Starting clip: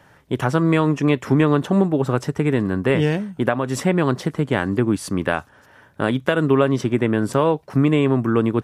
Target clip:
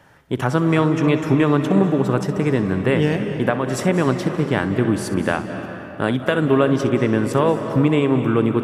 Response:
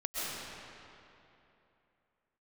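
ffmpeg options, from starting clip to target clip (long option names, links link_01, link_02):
-filter_complex "[0:a]asplit=2[link_01][link_02];[1:a]atrim=start_sample=2205,adelay=63[link_03];[link_02][link_03]afir=irnorm=-1:irlink=0,volume=-12.5dB[link_04];[link_01][link_04]amix=inputs=2:normalize=0"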